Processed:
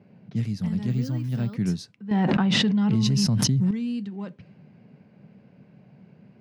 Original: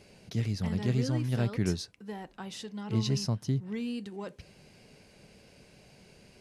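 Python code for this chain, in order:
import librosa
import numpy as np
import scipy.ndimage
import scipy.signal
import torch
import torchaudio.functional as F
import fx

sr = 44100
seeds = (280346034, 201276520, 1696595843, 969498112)

p1 = fx.env_lowpass(x, sr, base_hz=1300.0, full_db=-28.0)
p2 = fx.rider(p1, sr, range_db=5, speed_s=0.5)
p3 = p1 + (p2 * librosa.db_to_amplitude(0.5))
p4 = scipy.signal.sosfilt(scipy.signal.butter(4, 120.0, 'highpass', fs=sr, output='sos'), p3)
p5 = fx.low_shelf_res(p4, sr, hz=280.0, db=7.5, q=1.5)
p6 = fx.resample_bad(p5, sr, factor=2, down='filtered', up='hold', at=(0.9, 1.55))
p7 = fx.env_flatten(p6, sr, amount_pct=100, at=(2.11, 3.71))
y = p7 * librosa.db_to_amplitude(-8.5)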